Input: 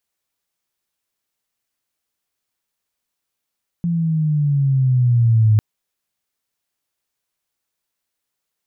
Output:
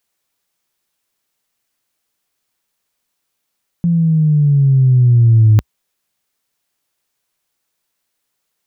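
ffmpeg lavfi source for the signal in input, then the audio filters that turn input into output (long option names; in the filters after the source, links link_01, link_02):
-f lavfi -i "aevalsrc='pow(10,(-9.5+7*(t/1.75-1))/20)*sin(2*PI*173*1.75/(-8.5*log(2)/12)*(exp(-8.5*log(2)/12*t/1.75)-1))':duration=1.75:sample_rate=44100"
-af "equalizer=frequency=61:width_type=o:width=0.55:gain=-8.5,acontrast=75"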